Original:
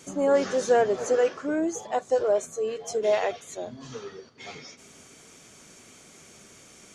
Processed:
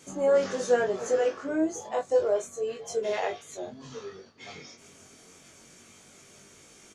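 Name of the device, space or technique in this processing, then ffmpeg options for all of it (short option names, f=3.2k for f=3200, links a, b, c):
double-tracked vocal: -filter_complex "[0:a]asplit=2[a][b];[b]adelay=22,volume=-9dB[c];[a][c]amix=inputs=2:normalize=0,flanger=delay=19.5:depth=2.7:speed=0.29"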